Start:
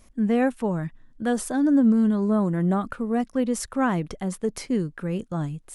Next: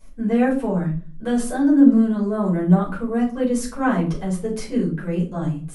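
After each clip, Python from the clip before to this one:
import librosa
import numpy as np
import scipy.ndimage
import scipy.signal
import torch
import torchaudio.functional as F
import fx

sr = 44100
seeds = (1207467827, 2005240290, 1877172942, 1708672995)

y = fx.room_shoebox(x, sr, seeds[0], volume_m3=230.0, walls='furnished', distance_m=5.0)
y = y * librosa.db_to_amplitude(-7.5)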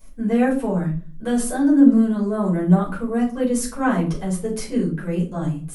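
y = fx.high_shelf(x, sr, hz=10000.0, db=12.0)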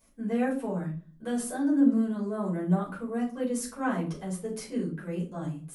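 y = fx.highpass(x, sr, hz=130.0, slope=6)
y = y * librosa.db_to_amplitude(-8.5)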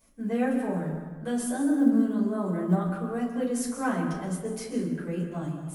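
y = fx.quant_float(x, sr, bits=6)
y = fx.rev_plate(y, sr, seeds[1], rt60_s=1.3, hf_ratio=0.55, predelay_ms=115, drr_db=6.5)
y = y * librosa.db_to_amplitude(1.0)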